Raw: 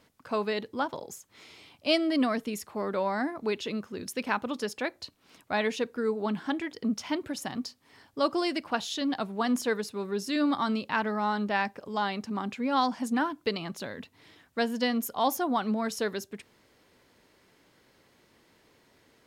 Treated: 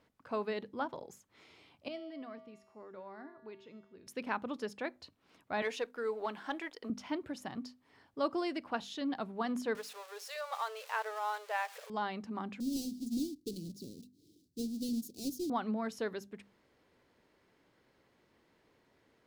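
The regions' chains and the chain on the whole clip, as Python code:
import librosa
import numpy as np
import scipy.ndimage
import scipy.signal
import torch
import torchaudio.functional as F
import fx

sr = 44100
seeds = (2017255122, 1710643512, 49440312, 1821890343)

y = fx.chain(x, sr, fx.steep_lowpass(hz=11000.0, slope=36),
    fx.high_shelf(hz=6300.0, db=-9.5),
    fx.comb_fb(f0_hz=130.0, decay_s=1.2, harmonics='odd', damping=0.0, mix_pct=80), at=(1.88, 4.07))
y = fx.chain(y, sr, fx.highpass(hz=490.0, slope=12),
    fx.high_shelf(hz=5900.0, db=5.5),
    fx.leveller(passes=1), at=(5.62, 6.9))
y = fx.chain(y, sr, fx.crossing_spikes(level_db=-24.5),
    fx.brickwall_highpass(low_hz=420.0),
    fx.high_shelf(hz=9100.0, db=-10.0), at=(9.75, 11.9))
y = fx.chain(y, sr, fx.halfwave_hold(),
    fx.cheby1_bandstop(low_hz=340.0, high_hz=4500.0, order=3),
    fx.low_shelf(hz=130.0, db=-10.5), at=(12.6, 15.5))
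y = fx.high_shelf(y, sr, hz=3700.0, db=-10.0)
y = fx.hum_notches(y, sr, base_hz=50, count=5)
y = y * 10.0 ** (-6.0 / 20.0)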